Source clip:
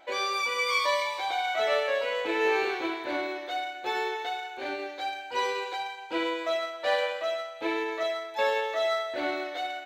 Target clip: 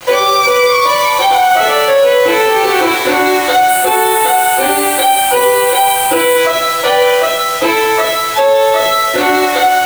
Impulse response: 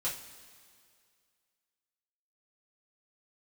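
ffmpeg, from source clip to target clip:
-filter_complex "[0:a]acrossover=split=270|660[link_01][link_02][link_03];[link_01]acompressor=threshold=-44dB:ratio=4[link_04];[link_02]acompressor=threshold=-39dB:ratio=4[link_05];[link_03]acompressor=threshold=-40dB:ratio=4[link_06];[link_04][link_05][link_06]amix=inputs=3:normalize=0,acrusher=bits=7:mix=0:aa=0.000001,asettb=1/sr,asplit=3[link_07][link_08][link_09];[link_07]atrim=end=3.684[link_10];[link_08]atrim=start=3.68:end=6.36,asetpts=PTS-STARTPTS,afade=type=in:duration=0.004:curve=qsin,afade=type=out:start_time=2.676:duration=0.004:curve=qsin,highshelf=frequency=7300:width_type=q:width=3:gain=7[link_11];[link_09]atrim=start=6.356[link_12];[link_10][link_11]acrossfade=duration=0.004:curve1=hsin:curve2=qsin[link_13];[link_13][link_12]acrossfade=duration=0.004:curve1=qsin:curve2=hsin[link_14];[1:a]atrim=start_sample=2205,atrim=end_sample=4410[link_15];[link_14][link_15]afir=irnorm=-1:irlink=0,alimiter=level_in=26.5dB:limit=-1dB:release=50:level=0:latency=1,volume=-1dB"

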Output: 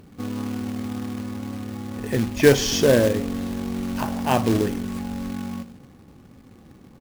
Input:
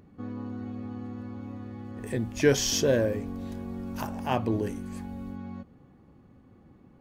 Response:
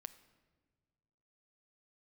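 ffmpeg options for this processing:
-filter_complex "[0:a]aecho=1:1:82:0.106,asplit=2[link_01][link_02];[1:a]atrim=start_sample=2205,asetrate=66150,aresample=44100,lowpass=5100[link_03];[link_02][link_03]afir=irnorm=-1:irlink=0,volume=9dB[link_04];[link_01][link_04]amix=inputs=2:normalize=0,acrusher=bits=3:mode=log:mix=0:aa=0.000001,volume=1dB"

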